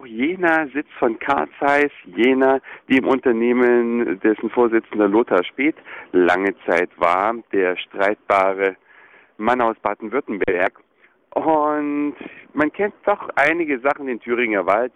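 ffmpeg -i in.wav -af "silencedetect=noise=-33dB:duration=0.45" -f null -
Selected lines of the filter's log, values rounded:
silence_start: 8.74
silence_end: 9.39 | silence_duration: 0.66
silence_start: 10.76
silence_end: 11.32 | silence_duration: 0.56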